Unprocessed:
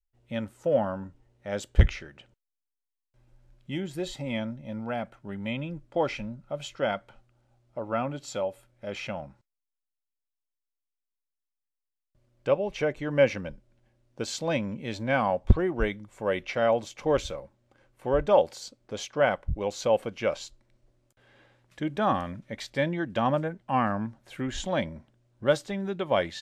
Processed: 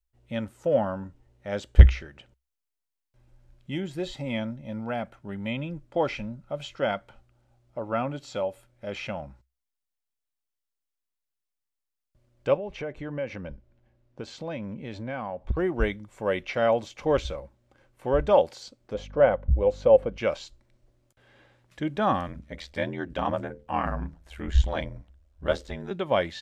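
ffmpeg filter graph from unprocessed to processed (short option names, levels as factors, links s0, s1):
-filter_complex "[0:a]asettb=1/sr,asplit=3[s0][s1][s2];[s0]atrim=end=12.574[s3];[s1]atrim=start=12.57:end=15.57,asetpts=PTS-STARTPTS,afade=t=in:d=0.004:c=qsin,afade=t=out:st=2.996:d=0.004:c=qsin,acompressor=threshold=0.02:ratio=2.5:attack=3.2:release=140:knee=1:detection=peak,lowpass=f=2500:p=1[s4];[s2]atrim=start=15.566[s5];[s3][s4]acrossfade=d=0.004:c1=hsin:c2=qsin[s6];[s6][s5]acrossfade=d=0.004:c1=qsin:c2=hsin,asettb=1/sr,asplit=3[s7][s8][s9];[s7]atrim=end=18.944[s10];[s8]atrim=start=18.94:end=20.18,asetpts=PTS-STARTPTS,afade=t=in:d=0.004:c=qsin,afade=t=out:st=1.236:d=0.004:c=qsin,lowpass=f=1200:p=1,equalizer=f=520:t=o:w=0.27:g=9.5,aeval=exprs='val(0)+0.00562*(sin(2*PI*50*n/s)+sin(2*PI*2*50*n/s)/2+sin(2*PI*3*50*n/s)/3+sin(2*PI*4*50*n/s)/4+sin(2*PI*5*50*n/s)/5)':c=same[s11];[s9]atrim=start=20.176[s12];[s10][s11]acrossfade=d=0.004:c1=hsin:c2=qsin[s13];[s13][s12]acrossfade=d=0.004:c1=qsin:c2=hsin,asettb=1/sr,asplit=3[s14][s15][s16];[s14]atrim=end=22.274[s17];[s15]atrim=start=22.27:end=25.91,asetpts=PTS-STARTPTS,afade=t=in:d=0.004:c=qsin,afade=t=out:st=3.636:d=0.004:c=qsin,bandreject=f=60:t=h:w=6,bandreject=f=120:t=h:w=6,bandreject=f=180:t=h:w=6,bandreject=f=240:t=h:w=6,bandreject=f=300:t=h:w=6,bandreject=f=360:t=h:w=6,bandreject=f=420:t=h:w=6,bandreject=f=480:t=h:w=6,bandreject=f=540:t=h:w=6,asubboost=boost=11.5:cutoff=57,aeval=exprs='val(0)*sin(2*PI*41*n/s)':c=same[s18];[s16]atrim=start=25.906[s19];[s17][s18]acrossfade=d=0.004:c1=hsin:c2=qsin[s20];[s20][s19]acrossfade=d=0.004:c1=qsin:c2=hsin,acrossover=split=5400[s21][s22];[s22]acompressor=threshold=0.00158:ratio=4:attack=1:release=60[s23];[s21][s23]amix=inputs=2:normalize=0,equalizer=f=63:t=o:w=0.35:g=12.5,volume=1.12"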